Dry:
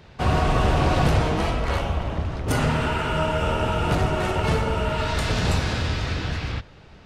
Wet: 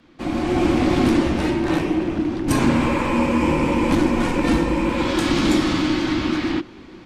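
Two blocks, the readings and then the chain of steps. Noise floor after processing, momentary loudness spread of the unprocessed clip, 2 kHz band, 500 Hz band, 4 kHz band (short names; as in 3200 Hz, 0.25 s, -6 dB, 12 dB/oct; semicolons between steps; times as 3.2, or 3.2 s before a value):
-42 dBFS, 7 LU, +1.5 dB, +2.5 dB, +1.5 dB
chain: AGC gain up to 11 dB; frequency shift -390 Hz; gain -4.5 dB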